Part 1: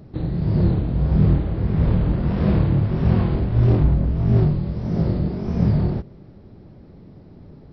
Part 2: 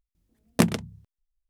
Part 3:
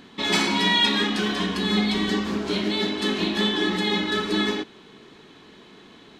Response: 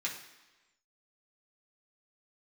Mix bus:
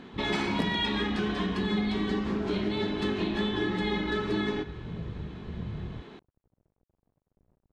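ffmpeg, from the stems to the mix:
-filter_complex "[0:a]aeval=exprs='sgn(val(0))*max(abs(val(0))-0.0106,0)':c=same,lowshelf=f=150:g=9,acompressor=threshold=0.2:ratio=6,volume=0.126[s0];[1:a]volume=0.794[s1];[2:a]volume=1.26,asplit=2[s2][s3];[s3]volume=0.237[s4];[3:a]atrim=start_sample=2205[s5];[s4][s5]afir=irnorm=-1:irlink=0[s6];[s0][s1][s2][s6]amix=inputs=4:normalize=0,lowpass=f=1400:p=1,acompressor=threshold=0.0355:ratio=2.5"

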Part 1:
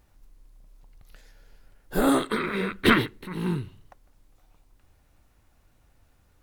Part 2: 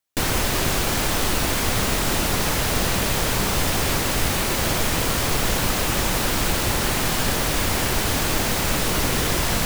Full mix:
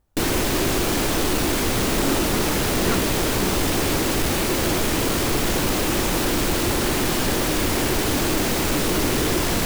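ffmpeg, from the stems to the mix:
-filter_complex "[0:a]lowpass=1400,volume=0.501[s0];[1:a]equalizer=f=330:t=o:w=1:g=9,bandreject=f=54.84:t=h:w=4,bandreject=f=109.68:t=h:w=4,bandreject=f=164.52:t=h:w=4,bandreject=f=219.36:t=h:w=4,bandreject=f=274.2:t=h:w=4,bandreject=f=329.04:t=h:w=4,bandreject=f=383.88:t=h:w=4,bandreject=f=438.72:t=h:w=4,bandreject=f=493.56:t=h:w=4,bandreject=f=548.4:t=h:w=4,bandreject=f=603.24:t=h:w=4,bandreject=f=658.08:t=h:w=4,bandreject=f=712.92:t=h:w=4,bandreject=f=767.76:t=h:w=4,bandreject=f=822.6:t=h:w=4,bandreject=f=877.44:t=h:w=4,bandreject=f=932.28:t=h:w=4,bandreject=f=987.12:t=h:w=4,bandreject=f=1041.96:t=h:w=4,bandreject=f=1096.8:t=h:w=4,bandreject=f=1151.64:t=h:w=4,bandreject=f=1206.48:t=h:w=4,bandreject=f=1261.32:t=h:w=4,bandreject=f=1316.16:t=h:w=4,bandreject=f=1371:t=h:w=4,bandreject=f=1425.84:t=h:w=4,bandreject=f=1480.68:t=h:w=4,bandreject=f=1535.52:t=h:w=4,bandreject=f=1590.36:t=h:w=4,bandreject=f=1645.2:t=h:w=4,bandreject=f=1700.04:t=h:w=4,bandreject=f=1754.88:t=h:w=4,bandreject=f=1809.72:t=h:w=4,bandreject=f=1864.56:t=h:w=4,bandreject=f=1919.4:t=h:w=4,bandreject=f=1974.24:t=h:w=4,bandreject=f=2029.08:t=h:w=4,bandreject=f=2083.92:t=h:w=4,asoftclip=type=tanh:threshold=0.2,volume=1.06[s1];[s0][s1]amix=inputs=2:normalize=0"

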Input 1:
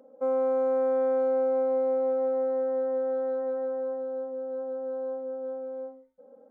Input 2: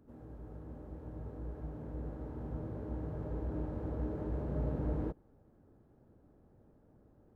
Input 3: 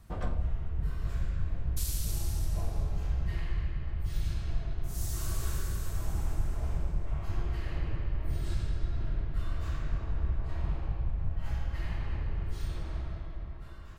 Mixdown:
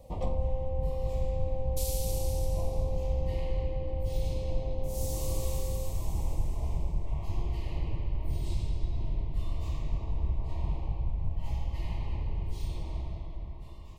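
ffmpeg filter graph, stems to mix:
-filter_complex "[0:a]equalizer=f=670:w=1.8:g=13,acompressor=threshold=0.0224:ratio=3,volume=0.376[s0];[1:a]adelay=300,volume=0.335[s1];[2:a]volume=1.06[s2];[s0][s1][s2]amix=inputs=3:normalize=0,asuperstop=centerf=1500:order=4:qfactor=1.3,equalizer=f=940:t=o:w=0.34:g=5"

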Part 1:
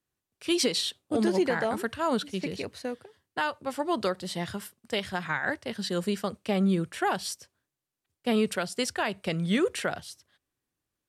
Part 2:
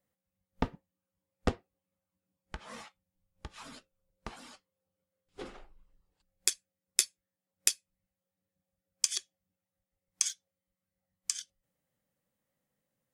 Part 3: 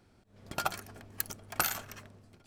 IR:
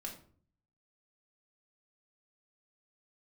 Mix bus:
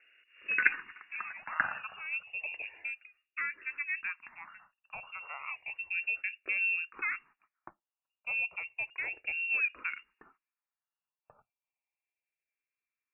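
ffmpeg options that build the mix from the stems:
-filter_complex "[0:a]lowpass=1900,volume=0.562[s0];[1:a]highpass=340,volume=0.562[s1];[2:a]equalizer=f=1100:w=1.2:g=12.5,volume=0.794[s2];[s0][s1][s2]amix=inputs=3:normalize=0,lowpass=f=2500:t=q:w=0.5098,lowpass=f=2500:t=q:w=0.6013,lowpass=f=2500:t=q:w=0.9,lowpass=f=2500:t=q:w=2.563,afreqshift=-2900,asplit=2[s3][s4];[s4]afreqshift=-0.32[s5];[s3][s5]amix=inputs=2:normalize=1"

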